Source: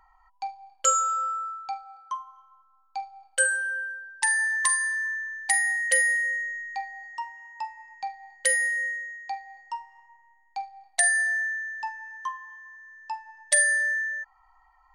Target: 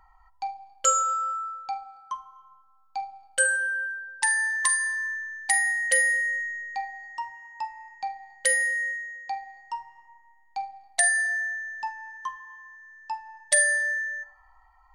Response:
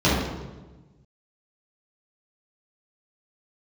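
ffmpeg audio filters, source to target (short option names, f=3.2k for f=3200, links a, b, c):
-filter_complex "[0:a]lowshelf=f=260:g=5.5,asplit=2[a][b];[1:a]atrim=start_sample=2205[c];[b][c]afir=irnorm=-1:irlink=0,volume=-33.5dB[d];[a][d]amix=inputs=2:normalize=0"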